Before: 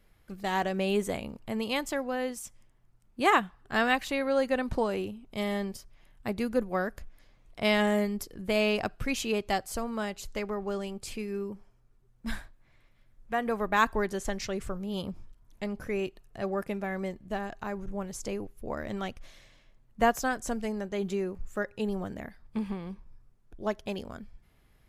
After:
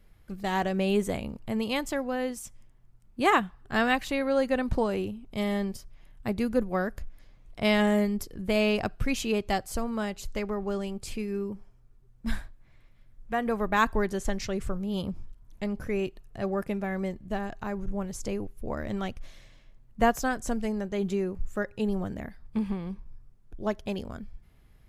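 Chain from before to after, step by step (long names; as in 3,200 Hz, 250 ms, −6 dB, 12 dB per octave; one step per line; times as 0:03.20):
low-shelf EQ 220 Hz +7 dB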